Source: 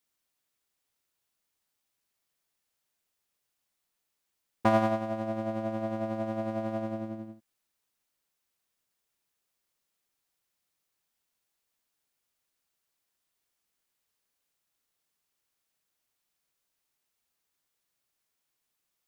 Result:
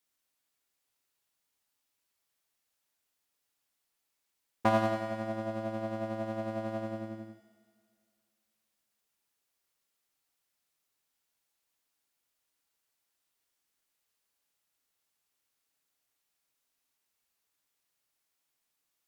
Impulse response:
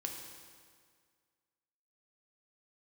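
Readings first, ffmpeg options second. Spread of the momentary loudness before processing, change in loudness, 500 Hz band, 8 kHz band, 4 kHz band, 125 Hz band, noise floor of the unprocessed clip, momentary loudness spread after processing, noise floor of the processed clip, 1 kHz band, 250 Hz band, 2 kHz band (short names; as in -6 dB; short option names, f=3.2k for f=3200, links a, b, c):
12 LU, -2.5 dB, -2.5 dB, n/a, +1.0 dB, -2.5 dB, -82 dBFS, 12 LU, -82 dBFS, -2.0 dB, -4.0 dB, 0.0 dB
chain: -filter_complex "[0:a]asplit=2[a][b];[1:a]atrim=start_sample=2205,asetrate=37485,aresample=44100,lowshelf=f=340:g=-7.5[c];[b][c]afir=irnorm=-1:irlink=0,volume=2dB[d];[a][d]amix=inputs=2:normalize=0,volume=-6.5dB"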